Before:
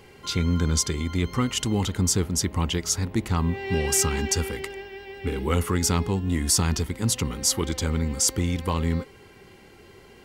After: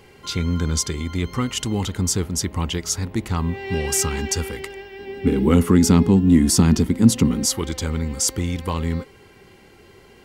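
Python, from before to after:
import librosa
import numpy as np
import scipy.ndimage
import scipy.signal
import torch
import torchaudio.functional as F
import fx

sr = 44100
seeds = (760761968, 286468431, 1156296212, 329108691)

y = fx.peak_eq(x, sr, hz=230.0, db=14.5, octaves=1.5, at=(4.99, 7.46))
y = y * librosa.db_to_amplitude(1.0)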